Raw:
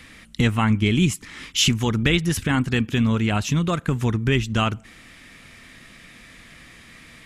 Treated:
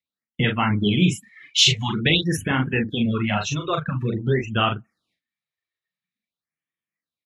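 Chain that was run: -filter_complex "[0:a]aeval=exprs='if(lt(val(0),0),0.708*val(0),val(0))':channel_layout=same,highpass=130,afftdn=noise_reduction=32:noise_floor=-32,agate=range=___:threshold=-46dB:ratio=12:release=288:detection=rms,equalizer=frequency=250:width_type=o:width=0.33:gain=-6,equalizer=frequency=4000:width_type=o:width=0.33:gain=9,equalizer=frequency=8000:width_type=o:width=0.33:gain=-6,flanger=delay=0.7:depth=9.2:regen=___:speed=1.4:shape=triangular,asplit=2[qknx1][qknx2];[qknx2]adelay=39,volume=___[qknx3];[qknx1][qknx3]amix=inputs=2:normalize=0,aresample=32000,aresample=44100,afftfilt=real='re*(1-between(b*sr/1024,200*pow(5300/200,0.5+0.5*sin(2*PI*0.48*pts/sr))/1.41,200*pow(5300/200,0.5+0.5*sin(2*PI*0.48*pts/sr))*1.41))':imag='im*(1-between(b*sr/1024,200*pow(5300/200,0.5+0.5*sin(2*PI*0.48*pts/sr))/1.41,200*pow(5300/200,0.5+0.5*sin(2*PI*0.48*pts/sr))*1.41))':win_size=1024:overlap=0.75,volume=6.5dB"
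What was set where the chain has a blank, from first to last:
-18dB, -50, -5dB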